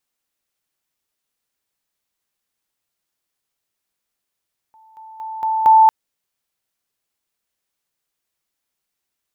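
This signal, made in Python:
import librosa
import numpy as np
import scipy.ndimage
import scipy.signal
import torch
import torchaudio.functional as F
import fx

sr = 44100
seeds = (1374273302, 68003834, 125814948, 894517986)

y = fx.level_ladder(sr, hz=882.0, from_db=-46.5, step_db=10.0, steps=5, dwell_s=0.23, gap_s=0.0)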